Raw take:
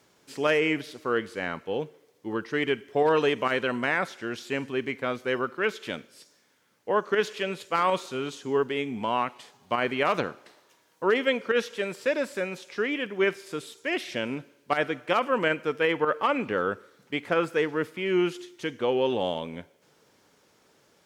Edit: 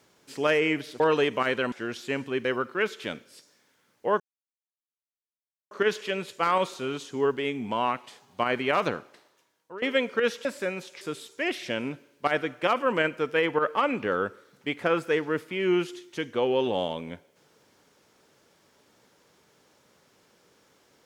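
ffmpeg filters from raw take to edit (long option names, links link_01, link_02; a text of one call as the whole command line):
ffmpeg -i in.wav -filter_complex "[0:a]asplit=8[link_01][link_02][link_03][link_04][link_05][link_06][link_07][link_08];[link_01]atrim=end=1.002[link_09];[link_02]atrim=start=3.048:end=3.772[link_10];[link_03]atrim=start=4.138:end=4.872[link_11];[link_04]atrim=start=5.278:end=7.03,asetpts=PTS-STARTPTS,afade=type=out:start_time=1.748:duration=0.004:curve=hsin,apad=pad_dur=1.51[link_12];[link_05]atrim=start=7.03:end=11.14,asetpts=PTS-STARTPTS,afade=type=in:duration=0.004:curve=hsin,afade=type=out:start_time=3.19:duration=0.92:silence=0.1[link_13];[link_06]atrim=start=11.14:end=11.772,asetpts=PTS-STARTPTS,afade=type=in:duration=0.004:curve=hsin:silence=0.1[link_14];[link_07]atrim=start=12.198:end=12.762[link_15];[link_08]atrim=start=13.468[link_16];[link_09][link_10]acrossfade=duration=0.004:curve1=hsin:curve2=hsin[link_17];[link_17][link_11]acrossfade=duration=0.004:curve1=hsin:curve2=hsin[link_18];[link_12][link_13][link_14]concat=n=3:v=0:a=1[link_19];[link_18][link_19]acrossfade=duration=0.004:curve1=hsin:curve2=hsin[link_20];[link_20][link_15]acrossfade=duration=0.004:curve1=hsin:curve2=hsin[link_21];[link_21][link_16]acrossfade=duration=0.004:curve1=hsin:curve2=hsin" out.wav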